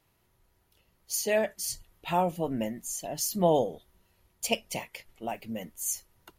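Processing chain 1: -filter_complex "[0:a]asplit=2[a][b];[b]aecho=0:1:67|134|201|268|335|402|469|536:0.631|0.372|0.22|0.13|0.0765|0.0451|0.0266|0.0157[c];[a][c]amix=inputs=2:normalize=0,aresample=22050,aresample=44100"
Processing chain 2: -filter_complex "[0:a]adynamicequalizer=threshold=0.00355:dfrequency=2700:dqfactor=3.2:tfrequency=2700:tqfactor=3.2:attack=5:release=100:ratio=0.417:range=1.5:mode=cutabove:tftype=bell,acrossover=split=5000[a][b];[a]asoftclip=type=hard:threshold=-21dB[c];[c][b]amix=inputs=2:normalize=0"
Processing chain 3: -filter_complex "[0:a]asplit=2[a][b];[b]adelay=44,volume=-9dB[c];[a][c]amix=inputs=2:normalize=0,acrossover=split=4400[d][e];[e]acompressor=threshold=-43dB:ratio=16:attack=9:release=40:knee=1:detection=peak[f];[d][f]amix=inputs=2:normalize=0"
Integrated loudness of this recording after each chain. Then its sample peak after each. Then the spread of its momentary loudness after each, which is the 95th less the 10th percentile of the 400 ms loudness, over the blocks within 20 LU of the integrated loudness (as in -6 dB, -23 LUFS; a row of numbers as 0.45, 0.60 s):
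-29.0, -31.5, -31.0 LUFS; -10.0, -16.5, -11.5 dBFS; 13, 11, 16 LU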